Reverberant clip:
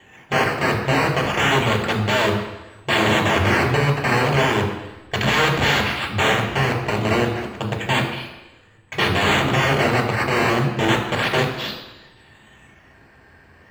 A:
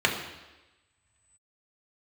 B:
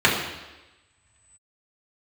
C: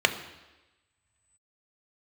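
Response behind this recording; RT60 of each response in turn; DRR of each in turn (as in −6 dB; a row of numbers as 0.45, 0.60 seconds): A; 1.1, 1.1, 1.1 seconds; −0.5, −6.0, 6.5 decibels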